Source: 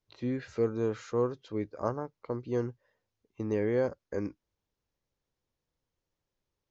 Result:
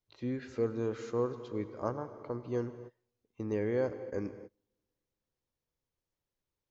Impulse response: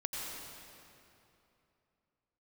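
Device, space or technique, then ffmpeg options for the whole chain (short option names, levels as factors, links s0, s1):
keyed gated reverb: -filter_complex "[0:a]asplit=3[s0][s1][s2];[1:a]atrim=start_sample=2205[s3];[s1][s3]afir=irnorm=-1:irlink=0[s4];[s2]apad=whole_len=295624[s5];[s4][s5]sidechaingate=range=0.0224:threshold=0.00141:ratio=16:detection=peak,volume=0.299[s6];[s0][s6]amix=inputs=2:normalize=0,volume=0.562"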